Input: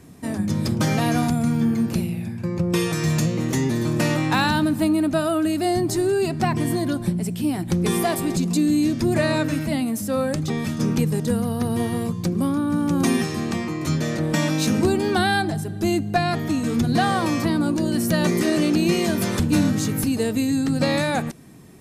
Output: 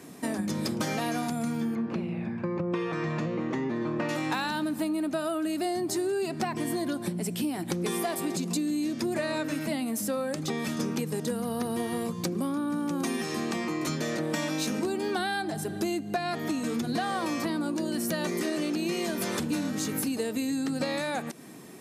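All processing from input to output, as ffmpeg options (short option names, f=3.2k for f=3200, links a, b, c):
-filter_complex "[0:a]asettb=1/sr,asplit=3[a][b][c];[a]atrim=end=1.754[d];[b]atrim=start=1.75:end=4.09,asetpts=PTS-STARTPTS,afade=t=in:d=0.004:c=qsin,afade=t=out:st=2.336:d=0.004:c=qsin,lowpass=2.1k,equalizer=f=1.1k:t=o:w=0.26:g=4.5[e];[c]atrim=start=4.086[f];[d][e]acrossfade=d=0.004:c1=hsin:c2=qsin[g];[g][f]acrossfade=d=0.004:c1=qsin:c2=hsin,highpass=250,acompressor=threshold=-31dB:ratio=6,volume=3.5dB"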